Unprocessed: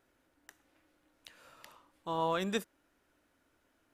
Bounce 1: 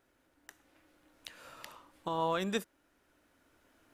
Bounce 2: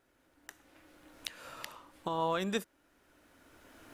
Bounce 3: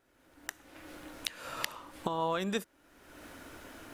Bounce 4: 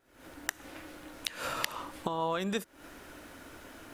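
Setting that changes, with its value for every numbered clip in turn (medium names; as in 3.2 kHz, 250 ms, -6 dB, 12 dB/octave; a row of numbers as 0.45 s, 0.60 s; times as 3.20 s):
recorder AGC, rising by: 5.1 dB/s, 14 dB/s, 36 dB/s, 91 dB/s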